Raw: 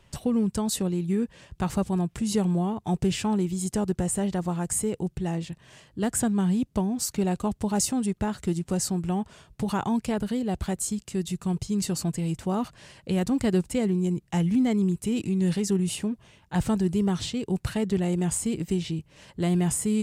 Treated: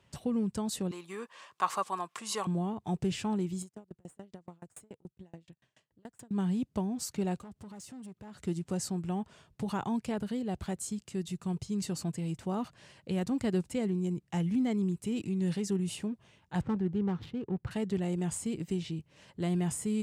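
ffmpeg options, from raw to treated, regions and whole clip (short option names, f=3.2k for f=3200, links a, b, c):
-filter_complex "[0:a]asettb=1/sr,asplit=3[a][b][c];[a]atrim=end=0.914[d];[b]atrim=start=0.91:end=2.47,asetpts=PTS-STARTPTS,afade=t=in:d=0.004:c=qsin,afade=t=out:st=1.556:d=0.004:c=qsin,highpass=720,acontrast=49,equalizer=f=1.1k:w=4.8:g=14.5[e];[c]atrim=start=2.466[f];[d][e]acrossfade=d=0.004:c1=hsin:c2=qsin[g];[g][f]acrossfade=d=0.004:c1=qsin:c2=hsin,asettb=1/sr,asplit=3[h][i][j];[h]atrim=end=3.624[k];[i]atrim=start=3.62:end=6.31,asetpts=PTS-STARTPTS,afade=t=in:d=0.004:c=qsin,afade=t=out:st=2.686:d=0.004:c=qsin,acompressor=threshold=-29dB:ratio=2.5:attack=3.2:release=140:knee=1:detection=peak,aeval=exprs='(tanh(20*val(0)+0.65)-tanh(0.65))/20':c=same,aeval=exprs='val(0)*pow(10,-35*if(lt(mod(7*n/s,1),2*abs(7)/1000),1-mod(7*n/s,1)/(2*abs(7)/1000),(mod(7*n/s,1)-2*abs(7)/1000)/(1-2*abs(7)/1000))/20)':c=same[l];[j]atrim=start=6.306[m];[k][l]acrossfade=d=0.004:c1=hsin:c2=qsin[n];[n][m]acrossfade=d=0.004:c1=qsin:c2=hsin,asettb=1/sr,asplit=3[o][p][q];[o]atrim=end=7.394[r];[p]atrim=start=7.39:end=8.37,asetpts=PTS-STARTPTS,afade=t=in:d=0.004:c=qsin,afade=t=out:st=0.976:d=0.004:c=qsin,acompressor=threshold=-37dB:ratio=4:attack=3.2:release=140:knee=1:detection=peak,asoftclip=type=hard:threshold=-35dB[s];[q]atrim=start=8.366[t];[r][s]acrossfade=d=0.004:c1=hsin:c2=qsin[u];[u][t]acrossfade=d=0.004:c1=qsin:c2=hsin,asettb=1/sr,asplit=3[v][w][x];[v]atrim=end=16.614[y];[w]atrim=start=16.61:end=17.71,asetpts=PTS-STARTPTS,afade=t=in:d=0.004:c=qsin,afade=t=out:st=1.096:d=0.004:c=qsin,adynamicsmooth=sensitivity=3:basefreq=870,asuperstop=centerf=650:order=4:qfactor=5.9[z];[x]atrim=start=17.706[aa];[y][z]acrossfade=d=0.004:c1=hsin:c2=qsin[ab];[ab][aa]acrossfade=d=0.004:c1=qsin:c2=hsin,highpass=78,highshelf=f=9.1k:g=-6.5,volume=-6.5dB"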